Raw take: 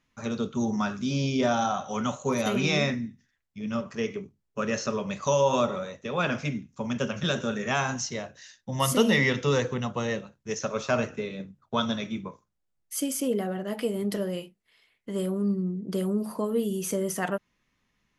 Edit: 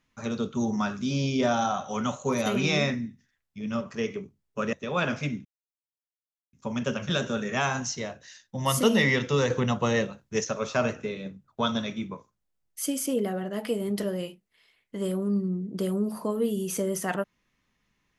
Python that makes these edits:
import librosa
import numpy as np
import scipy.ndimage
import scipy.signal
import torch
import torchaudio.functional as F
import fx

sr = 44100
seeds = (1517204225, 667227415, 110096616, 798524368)

y = fx.edit(x, sr, fx.cut(start_s=4.73, length_s=1.22),
    fx.insert_silence(at_s=6.67, length_s=1.08),
    fx.clip_gain(start_s=9.64, length_s=0.94, db=4.5), tone=tone)